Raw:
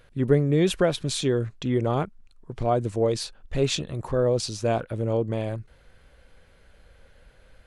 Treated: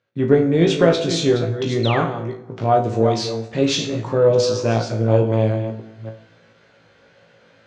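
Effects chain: reverse delay 0.29 s, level -8.5 dB; gate with hold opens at -45 dBFS; elliptic band-pass 120–6200 Hz, stop band 40 dB; flutter echo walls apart 3.1 m, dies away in 0.23 s; painted sound fall, 1.83–2.05, 990–4400 Hz -32 dBFS; plate-style reverb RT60 0.95 s, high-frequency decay 0.65×, DRR 8.5 dB; added harmonics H 6 -34 dB, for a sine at -5.5 dBFS; gain +4.5 dB

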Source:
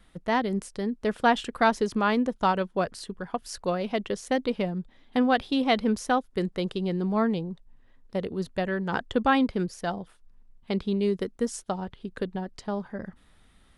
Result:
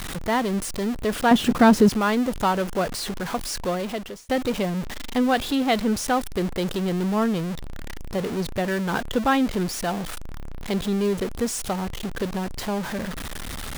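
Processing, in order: zero-crossing step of -26.5 dBFS; 1.31–1.89 bell 170 Hz +13.5 dB 2.3 oct; 3.45–4.29 fade out equal-power

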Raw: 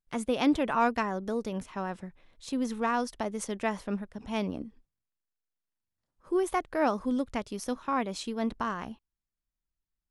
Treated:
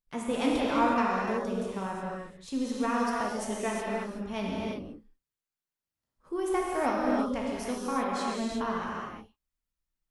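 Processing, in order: non-linear reverb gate 0.39 s flat, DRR -4.5 dB; gain -4.5 dB

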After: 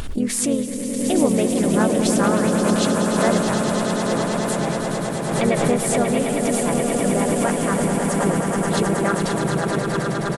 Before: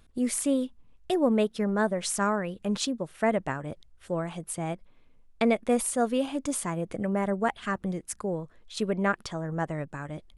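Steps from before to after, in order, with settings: swelling echo 0.106 s, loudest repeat 8, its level -8.5 dB; harmoniser -12 st -18 dB, -3 st -3 dB, +3 st -17 dB; backwards sustainer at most 36 dB/s; gain +2 dB

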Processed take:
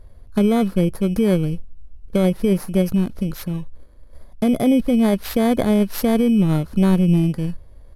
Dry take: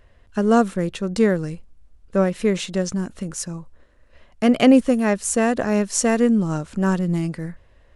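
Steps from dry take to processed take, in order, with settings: FFT order left unsorted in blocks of 16 samples; dynamic EQ 5800 Hz, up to -5 dB, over -43 dBFS, Q 1.2; in parallel at +3 dB: negative-ratio compressor -19 dBFS, ratio -0.5; on the sum: downsampling 32000 Hz; tilt -2 dB/oct; gain -7.5 dB

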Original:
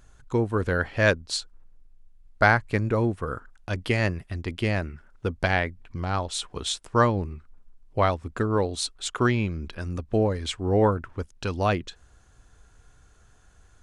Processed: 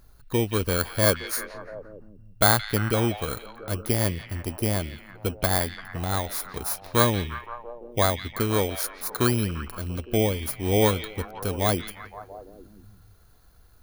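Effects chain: FFT order left unsorted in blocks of 16 samples; delay with a stepping band-pass 0.172 s, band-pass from 2600 Hz, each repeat -0.7 oct, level -5.5 dB

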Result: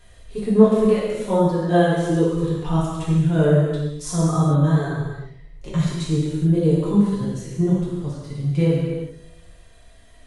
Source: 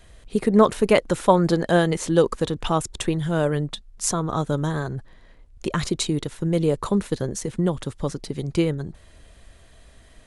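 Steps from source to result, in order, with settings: reverb removal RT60 0.89 s; harmonic-percussive split percussive -17 dB; vocal rider within 4 dB 2 s; on a send: analogue delay 0.115 s, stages 1024, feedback 62%, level -23.5 dB; on the sum: non-linear reverb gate 0.46 s falling, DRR -7 dB; gain -1.5 dB

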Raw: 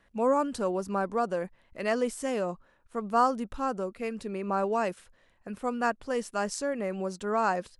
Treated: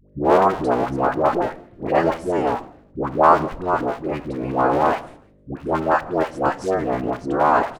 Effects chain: cycle switcher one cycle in 3, inverted; expander -51 dBFS; frequency-shifting echo 0.157 s, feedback 35%, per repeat -84 Hz, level -22.5 dB; dynamic EQ 870 Hz, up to +5 dB, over -37 dBFS, Q 0.73; LPF 1400 Hz 6 dB/oct; buzz 50 Hz, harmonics 12, -61 dBFS -3 dB/oct; dispersion highs, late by 99 ms, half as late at 610 Hz; on a send at -15 dB: reverb RT60 0.60 s, pre-delay 8 ms; on the sum: gain +7.5 dB

